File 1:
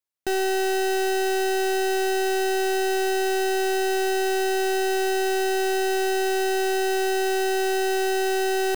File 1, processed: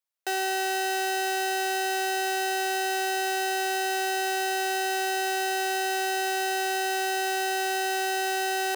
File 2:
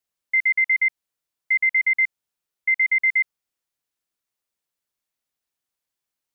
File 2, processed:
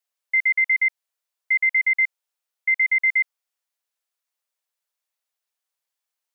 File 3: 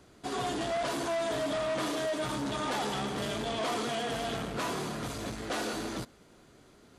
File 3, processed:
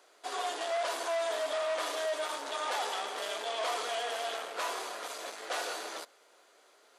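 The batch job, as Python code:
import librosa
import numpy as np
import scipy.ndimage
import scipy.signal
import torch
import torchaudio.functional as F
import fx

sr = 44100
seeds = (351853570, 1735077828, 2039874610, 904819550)

y = scipy.signal.sosfilt(scipy.signal.butter(4, 490.0, 'highpass', fs=sr, output='sos'), x)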